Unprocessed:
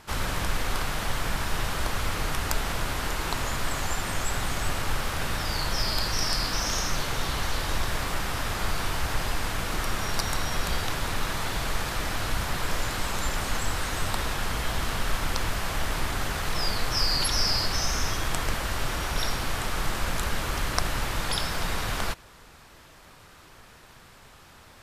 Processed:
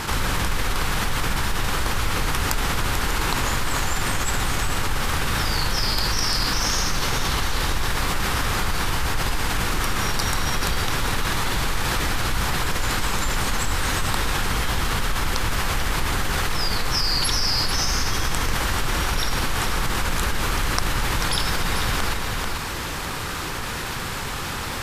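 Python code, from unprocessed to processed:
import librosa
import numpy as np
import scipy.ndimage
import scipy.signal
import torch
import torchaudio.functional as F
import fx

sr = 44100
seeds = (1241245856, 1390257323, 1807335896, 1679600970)

p1 = fx.peak_eq(x, sr, hz=640.0, db=-7.0, octaves=0.27)
p2 = p1 + fx.echo_single(p1, sr, ms=439, db=-11.0, dry=0)
y = fx.env_flatten(p2, sr, amount_pct=70)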